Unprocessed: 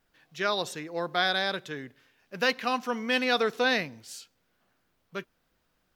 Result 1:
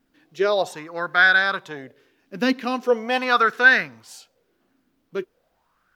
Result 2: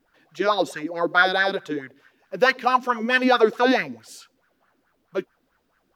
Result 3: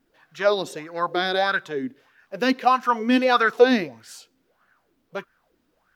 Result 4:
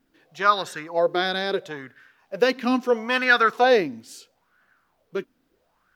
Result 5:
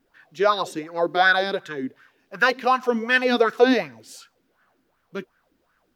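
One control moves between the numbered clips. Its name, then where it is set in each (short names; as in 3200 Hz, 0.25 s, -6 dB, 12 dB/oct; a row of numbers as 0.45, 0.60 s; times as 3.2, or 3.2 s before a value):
LFO bell, rate: 0.41, 4.6, 1.6, 0.75, 2.7 Hz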